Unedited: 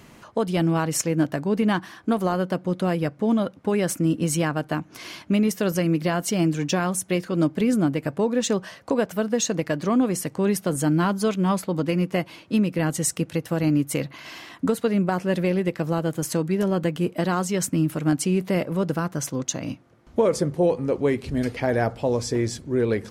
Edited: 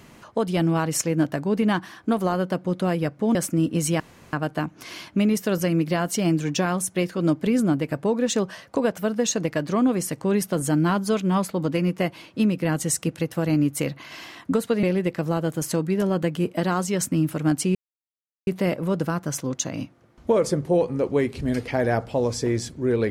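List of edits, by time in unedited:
3.35–3.82 s: delete
4.47 s: insert room tone 0.33 s
14.97–15.44 s: delete
18.36 s: insert silence 0.72 s

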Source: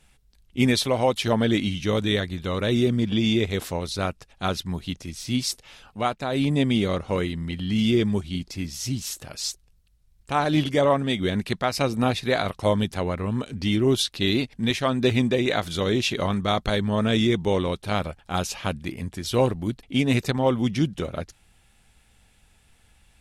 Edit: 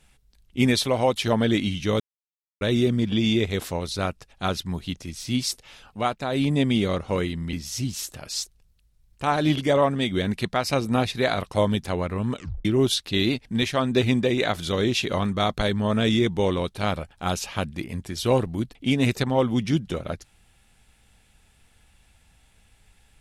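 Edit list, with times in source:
2.00–2.61 s: mute
7.53–8.61 s: delete
13.44 s: tape stop 0.29 s

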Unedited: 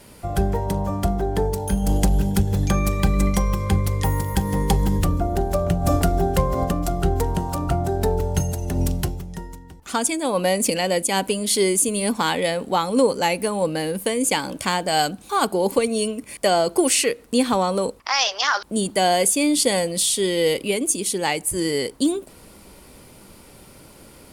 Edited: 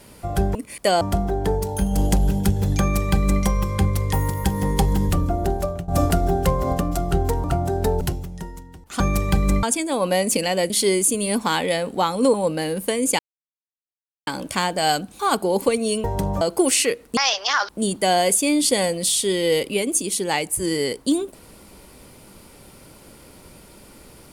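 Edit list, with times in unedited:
0.55–0.92 s: swap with 16.14–16.60 s
2.71–3.34 s: copy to 9.96 s
5.45–5.79 s: fade out, to -17.5 dB
7.35–7.63 s: delete
8.20–8.97 s: delete
11.03–11.44 s: delete
13.08–13.52 s: delete
14.37 s: insert silence 1.08 s
17.36–18.11 s: delete

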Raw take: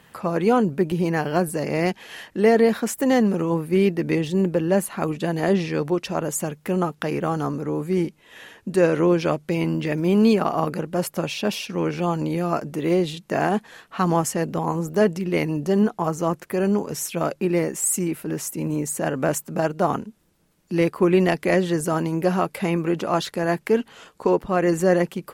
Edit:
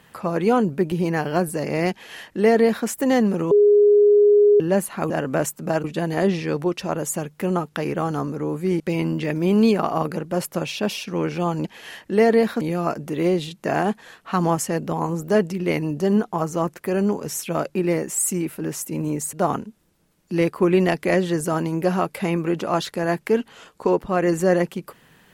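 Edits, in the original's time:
1.91–2.87 s: copy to 12.27 s
3.51–4.60 s: bleep 413 Hz -10.5 dBFS
8.06–9.42 s: delete
18.99–19.73 s: move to 5.10 s

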